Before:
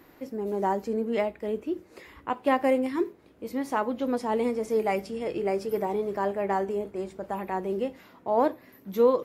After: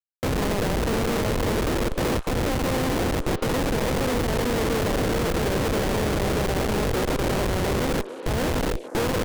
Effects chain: per-bin compression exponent 0.2; gate with hold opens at -10 dBFS; compressor 8:1, threshold -19 dBFS, peak gain reduction 8.5 dB; Schmitt trigger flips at -21.5 dBFS; delay with a stepping band-pass 0.288 s, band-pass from 440 Hz, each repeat 1.4 oct, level -8 dB

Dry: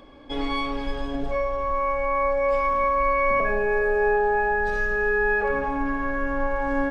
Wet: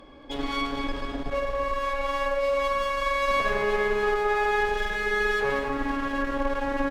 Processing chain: de-hum 49.4 Hz, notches 19; one-sided clip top -34 dBFS; feedback echo 0.226 s, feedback 46%, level -9 dB

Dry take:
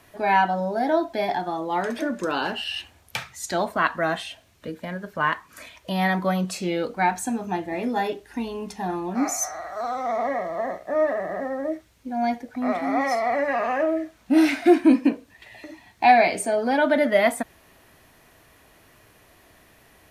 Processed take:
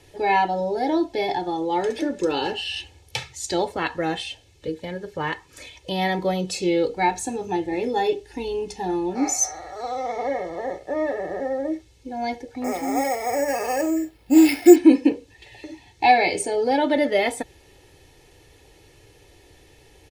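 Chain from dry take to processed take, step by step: LPF 7600 Hz 12 dB/oct; bell 1300 Hz -14.5 dB 1.1 oct; comb 2.3 ms, depth 74%; 12.64–14.76 careless resampling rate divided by 6×, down filtered, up hold; gain +4 dB

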